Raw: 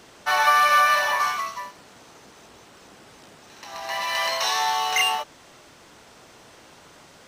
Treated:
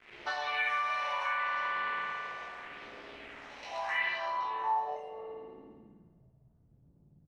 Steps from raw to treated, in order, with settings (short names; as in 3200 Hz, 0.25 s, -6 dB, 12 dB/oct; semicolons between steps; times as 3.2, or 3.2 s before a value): median filter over 5 samples; phaser stages 4, 0.76 Hz, lowest notch 240–2200 Hz; tone controls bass -10 dB, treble +13 dB; chorus 0.32 Hz, delay 17 ms, depth 3.6 ms; doubler 14 ms -7 dB; spring tank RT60 2.7 s, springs 54 ms, chirp 70 ms, DRR -3 dB; compressor 10:1, threshold -32 dBFS, peak gain reduction 16 dB; requantised 8-bit, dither none; low-pass sweep 2200 Hz -> 130 Hz, 3.96–6.33